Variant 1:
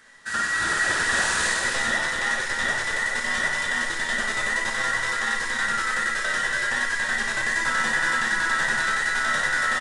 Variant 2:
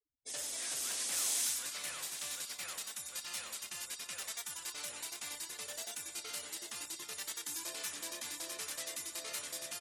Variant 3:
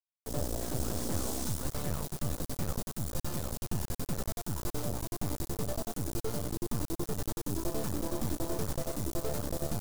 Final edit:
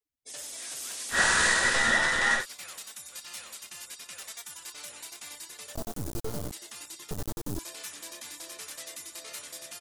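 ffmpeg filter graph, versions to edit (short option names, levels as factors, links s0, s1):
-filter_complex "[2:a]asplit=2[s0][s1];[1:a]asplit=4[s2][s3][s4][s5];[s2]atrim=end=1.2[s6];[0:a]atrim=start=1.1:end=2.46[s7];[s3]atrim=start=2.36:end=5.752[s8];[s0]atrim=start=5.748:end=6.522[s9];[s4]atrim=start=6.518:end=7.112[s10];[s1]atrim=start=7.108:end=7.592[s11];[s5]atrim=start=7.588[s12];[s6][s7]acrossfade=d=0.1:c1=tri:c2=tri[s13];[s13][s8]acrossfade=d=0.1:c1=tri:c2=tri[s14];[s14][s9]acrossfade=d=0.004:c1=hsin:c2=hsin[s15];[s15][s10]acrossfade=d=0.004:c1=hsin:c2=hsin[s16];[s16][s11]acrossfade=d=0.004:c1=hsin:c2=hsin[s17];[s17][s12]acrossfade=d=0.004:c1=hsin:c2=hsin"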